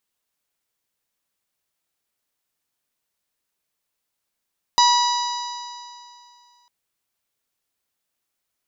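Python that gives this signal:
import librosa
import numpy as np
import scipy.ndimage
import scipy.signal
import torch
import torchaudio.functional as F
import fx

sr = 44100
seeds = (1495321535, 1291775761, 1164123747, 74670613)

y = fx.additive_stiff(sr, length_s=1.9, hz=967.0, level_db=-12.5, upper_db=(-15.5, -17.5, -6.5, -7, -10.5, -17.0), decay_s=2.45, stiffness=0.0017)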